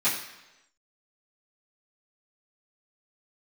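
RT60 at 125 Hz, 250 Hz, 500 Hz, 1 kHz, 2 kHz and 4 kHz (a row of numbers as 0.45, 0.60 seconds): 0.90, 0.90, 1.0, 1.0, 1.0, 0.95 seconds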